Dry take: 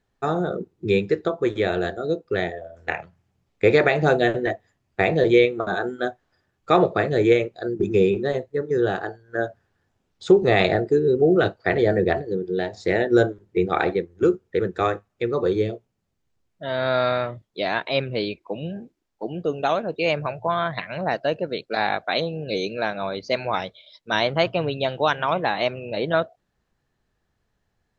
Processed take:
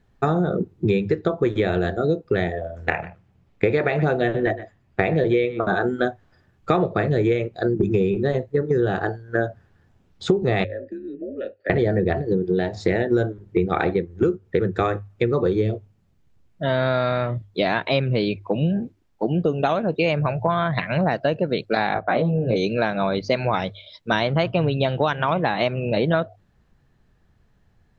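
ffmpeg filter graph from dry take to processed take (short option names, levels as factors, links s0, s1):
-filter_complex "[0:a]asettb=1/sr,asplit=3[s0][s1][s2];[s0]atrim=end=2.904[s3];[s1]atrim=start=2.9:end=5.81,asetpts=PTS-STARTPTS,afade=t=in:d=0.004:c=qsin,afade=t=out:st=2.906:d=0.004:c=qsin,bass=f=250:g=-3,treble=f=4000:g=-5,aecho=1:1:122:0.112,atrim=end_sample=128331[s4];[s2]atrim=start=5.806[s5];[s3][s4]acrossfade=d=0.004:c1=hsin:c2=qsin[s6];[s6][s5]acrossfade=d=0.004:c1=qsin:c2=hsin,asettb=1/sr,asplit=3[s7][s8][s9];[s7]atrim=end=10.644[s10];[s8]atrim=start=10.64:end=11.7,asetpts=PTS-STARTPTS,afade=t=in:d=0.004:c=qsin,afade=t=out:st=1.056:d=0.004:c=qsin,afreqshift=-94,acrossover=split=120|250[s11][s12][s13];[s11]acompressor=threshold=0.01:ratio=4[s14];[s12]acompressor=threshold=0.0141:ratio=4[s15];[s13]acompressor=threshold=0.0501:ratio=4[s16];[s14][s15][s16]amix=inputs=3:normalize=0,asplit=3[s17][s18][s19];[s17]bandpass=f=530:t=q:w=8,volume=1[s20];[s18]bandpass=f=1840:t=q:w=8,volume=0.501[s21];[s19]bandpass=f=2480:t=q:w=8,volume=0.355[s22];[s20][s21][s22]amix=inputs=3:normalize=0[s23];[s9]atrim=start=11.696[s24];[s10][s23]acrossfade=d=0.004:c1=hsin:c2=qsin[s25];[s25][s24]acrossfade=d=0.004:c1=qsin:c2=hsin,asettb=1/sr,asplit=3[s26][s27][s28];[s26]atrim=end=21.944[s29];[s27]atrim=start=21.94:end=22.56,asetpts=PTS-STARTPTS,afade=t=in:d=0.004:c=qsin,afade=t=out:st=0.616:d=0.004:c=qsin,lowpass=1500,asplit=2[s30][s31];[s31]adelay=17,volume=0.708[s32];[s30][s32]amix=inputs=2:normalize=0,atrim=end_sample=27342[s33];[s28]atrim=start=22.556[s34];[s29][s33]acrossfade=d=0.004:c1=hsin:c2=qsin[s35];[s35][s34]acrossfade=d=0.004:c1=qsin:c2=hsin,bass=f=250:g=8,treble=f=4000:g=-5,bandreject=f=50:t=h:w=6,bandreject=f=100:t=h:w=6,acompressor=threshold=0.0631:ratio=6,volume=2.24"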